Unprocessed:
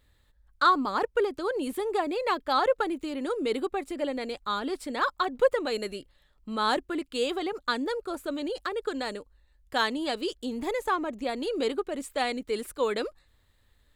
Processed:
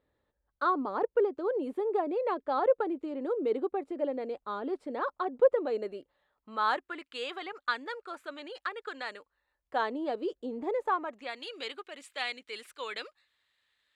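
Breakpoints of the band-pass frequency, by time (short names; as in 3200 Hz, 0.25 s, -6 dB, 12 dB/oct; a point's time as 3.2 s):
band-pass, Q 1
5.75 s 490 Hz
6.99 s 1700 Hz
9.17 s 1700 Hz
9.98 s 510 Hz
10.74 s 510 Hz
11.4 s 2600 Hz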